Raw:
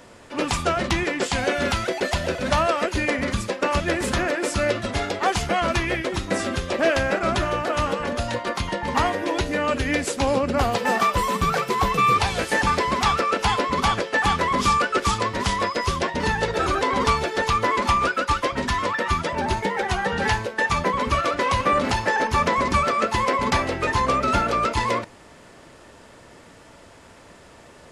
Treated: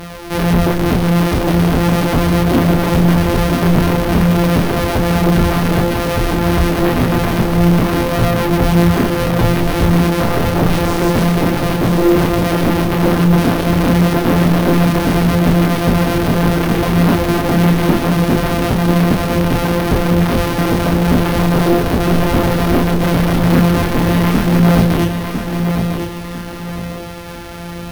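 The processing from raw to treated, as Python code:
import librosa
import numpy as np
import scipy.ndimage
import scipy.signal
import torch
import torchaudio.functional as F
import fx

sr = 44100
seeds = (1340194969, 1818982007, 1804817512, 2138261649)

p1 = np.r_[np.sort(x[:len(x) // 256 * 256].reshape(-1, 256), axis=1).ravel(), x[len(x) // 256 * 256:]]
p2 = fx.high_shelf(p1, sr, hz=3300.0, db=-11.0, at=(10.7, 11.32))
p3 = fx.fold_sine(p2, sr, drive_db=16, ceiling_db=-7.0)
p4 = fx.chorus_voices(p3, sr, voices=4, hz=0.44, base_ms=29, depth_ms=4.3, mix_pct=40)
p5 = p4 + fx.echo_feedback(p4, sr, ms=1002, feedback_pct=33, wet_db=-7.0, dry=0)
p6 = np.repeat(scipy.signal.resample_poly(p5, 1, 3), 3)[:len(p5)]
y = F.gain(torch.from_numpy(p6), 1.5).numpy()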